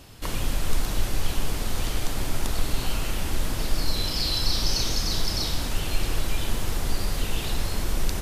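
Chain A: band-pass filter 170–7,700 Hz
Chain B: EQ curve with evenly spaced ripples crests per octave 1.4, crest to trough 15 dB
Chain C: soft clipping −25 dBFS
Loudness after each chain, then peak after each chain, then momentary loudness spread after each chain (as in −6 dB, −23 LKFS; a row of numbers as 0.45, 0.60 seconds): −31.0, −25.0, −33.5 LKFS; −12.5, −3.5, −25.0 dBFS; 8, 6, 6 LU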